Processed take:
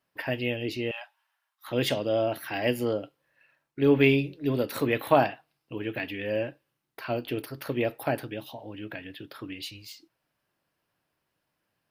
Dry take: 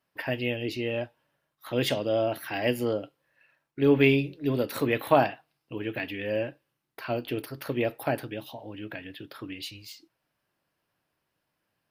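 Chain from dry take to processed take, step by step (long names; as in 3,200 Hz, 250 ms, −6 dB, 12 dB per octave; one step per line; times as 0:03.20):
0:00.91–0:01.68: Butterworth high-pass 760 Hz 48 dB per octave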